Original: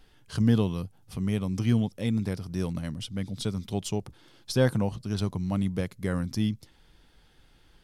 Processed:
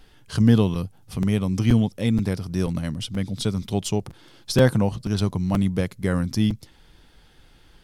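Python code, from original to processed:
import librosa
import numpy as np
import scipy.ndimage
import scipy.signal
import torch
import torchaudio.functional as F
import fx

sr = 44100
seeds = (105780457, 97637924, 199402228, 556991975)

y = fx.buffer_crackle(x, sr, first_s=0.74, period_s=0.48, block=256, kind='repeat')
y = y * librosa.db_to_amplitude(6.0)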